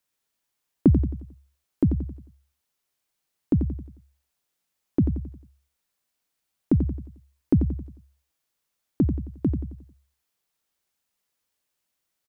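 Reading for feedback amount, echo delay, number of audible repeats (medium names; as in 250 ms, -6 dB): 42%, 89 ms, 4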